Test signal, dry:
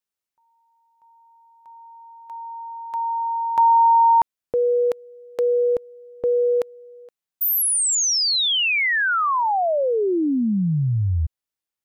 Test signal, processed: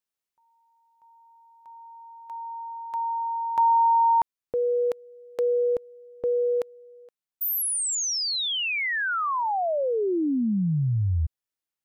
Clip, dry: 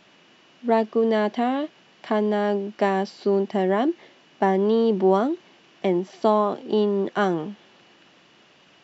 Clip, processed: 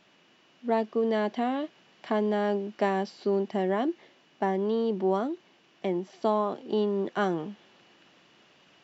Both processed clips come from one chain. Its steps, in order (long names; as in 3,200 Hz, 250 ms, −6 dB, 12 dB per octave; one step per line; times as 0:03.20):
speech leveller within 4 dB 2 s
level −5.5 dB